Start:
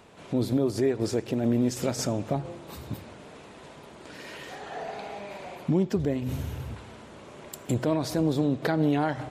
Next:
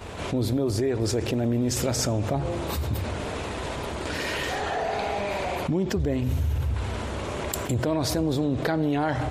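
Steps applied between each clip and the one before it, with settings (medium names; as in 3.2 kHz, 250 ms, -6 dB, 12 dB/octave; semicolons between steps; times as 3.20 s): expander -42 dBFS; resonant low shelf 110 Hz +9 dB, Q 1.5; level flattener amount 70%; trim -1 dB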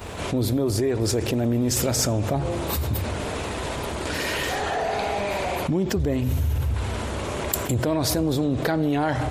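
treble shelf 11 kHz +11 dB; in parallel at -9.5 dB: saturation -21 dBFS, distortion -16 dB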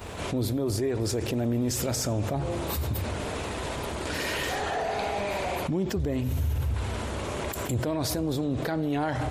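peak limiter -16.5 dBFS, peak gain reduction 10.5 dB; trim -3.5 dB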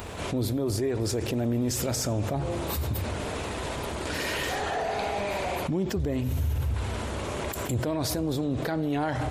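upward compressor, threshold -38 dBFS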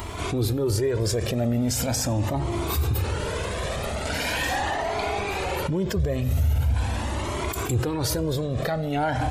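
Shepard-style flanger rising 0.41 Hz; trim +8 dB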